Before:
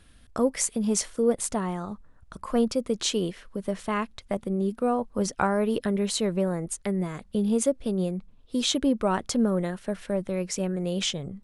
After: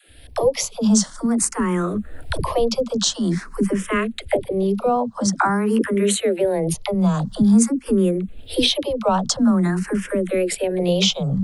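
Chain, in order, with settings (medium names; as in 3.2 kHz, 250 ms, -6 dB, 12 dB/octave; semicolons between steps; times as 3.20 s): recorder AGC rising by 34 dB/s; 4.89–6.37 s: high-pass 110 Hz 6 dB/octave; phase dispersion lows, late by 86 ms, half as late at 340 Hz; barber-pole phaser +0.48 Hz; trim +8 dB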